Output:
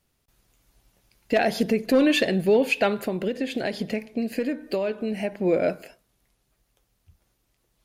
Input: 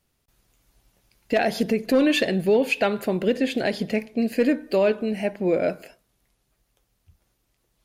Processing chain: 2.93–5.32 s: compression, threshold -23 dBFS, peak gain reduction 8 dB

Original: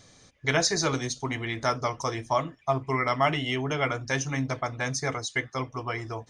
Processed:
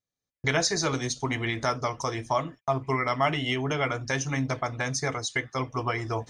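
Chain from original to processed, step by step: recorder AGC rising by 16 dB/s; gate -42 dBFS, range -38 dB; trim -1 dB

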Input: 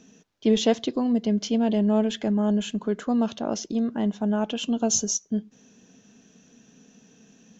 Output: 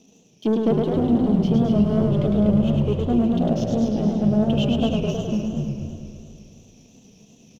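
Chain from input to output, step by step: single-diode clipper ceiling -8 dBFS; Chebyshev band-stop 710–2700 Hz, order 2; low-pass that closes with the level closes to 650 Hz, closed at -20 dBFS; waveshaping leveller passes 1; frequency-shifting echo 245 ms, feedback 45%, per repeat -62 Hz, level -5 dB; spring tank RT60 2.9 s, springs 33 ms, chirp 30 ms, DRR 12 dB; modulated delay 106 ms, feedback 66%, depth 124 cents, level -4 dB

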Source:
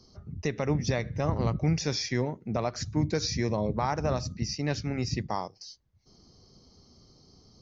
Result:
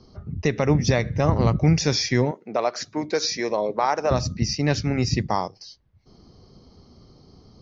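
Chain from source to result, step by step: 2.31–4.11 s: Chebyshev high-pass 460 Hz, order 2; level-controlled noise filter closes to 3 kHz, open at -23 dBFS; trim +8 dB

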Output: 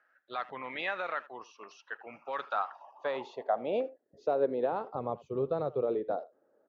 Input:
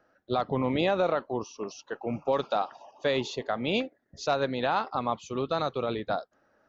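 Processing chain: 4.72–5.82 s: resonant low shelf 190 Hz +9.5 dB, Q 1.5; speakerphone echo 80 ms, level -18 dB; band-pass sweep 1.8 kHz -> 440 Hz, 2.23–4.18 s; trim +3.5 dB

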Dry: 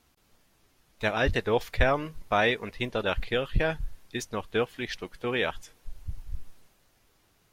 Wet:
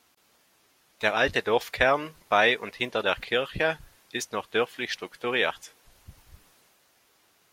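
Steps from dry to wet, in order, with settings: high-pass 480 Hz 6 dB/octave; trim +4.5 dB

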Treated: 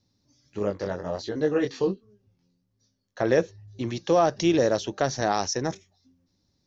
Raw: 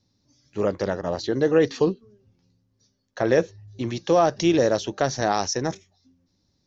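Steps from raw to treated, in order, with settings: 0.59–3.20 s: chorus 1.3 Hz, delay 19 ms, depth 3.8 ms; trim -2 dB

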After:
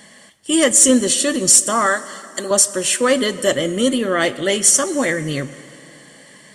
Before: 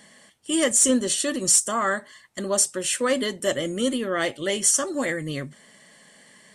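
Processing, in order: 1.86–2.51 s: tone controls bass -15 dB, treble +6 dB; reverberation RT60 2.9 s, pre-delay 77 ms, DRR 16 dB; trim +7 dB

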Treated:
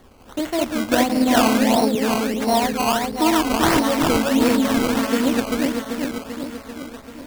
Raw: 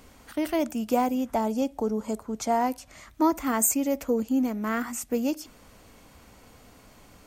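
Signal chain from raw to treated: backward echo that repeats 195 ms, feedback 79%, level -1 dB; 1.04–1.85 s: flutter echo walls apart 9.4 m, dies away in 0.75 s; decimation with a swept rate 17×, swing 100% 1.5 Hz; trim +3 dB

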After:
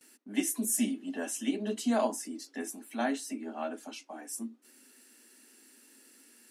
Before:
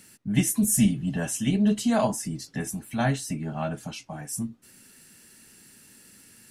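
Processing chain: steep high-pass 240 Hz 72 dB/octave; bass shelf 390 Hz +6.5 dB; gate with hold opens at -44 dBFS; trim -6 dB

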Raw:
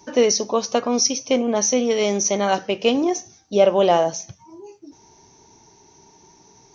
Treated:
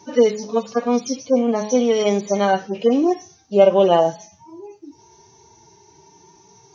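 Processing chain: harmonic-percussive separation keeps harmonic; de-hum 212.2 Hz, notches 5; trim +3 dB

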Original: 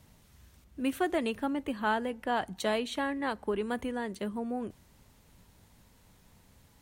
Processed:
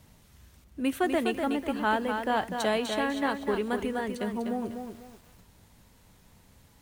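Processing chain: bit-crushed delay 248 ms, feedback 35%, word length 9-bit, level -6 dB; trim +2.5 dB

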